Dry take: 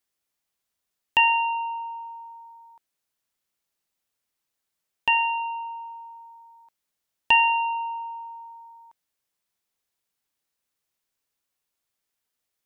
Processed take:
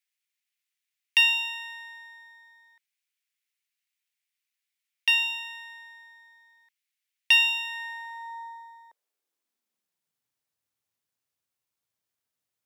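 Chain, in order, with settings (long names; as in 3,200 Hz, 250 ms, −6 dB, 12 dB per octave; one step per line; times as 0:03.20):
half-wave rectification
high-pass filter sweep 2,200 Hz → 100 Hz, 0:07.63–0:10.36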